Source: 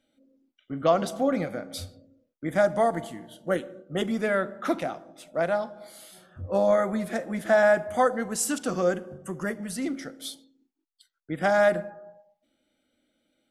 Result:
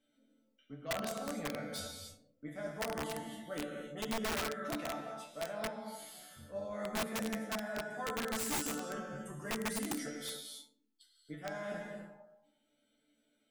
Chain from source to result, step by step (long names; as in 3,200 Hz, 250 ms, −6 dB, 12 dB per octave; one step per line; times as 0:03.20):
reversed playback
downward compressor 10 to 1, threshold −31 dBFS, peak gain reduction 16 dB
reversed playback
resonators tuned to a chord D3 fifth, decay 0.21 s
reverb whose tail is shaped and stops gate 320 ms flat, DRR 0.5 dB
wrap-around overflow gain 36.5 dB
level +6.5 dB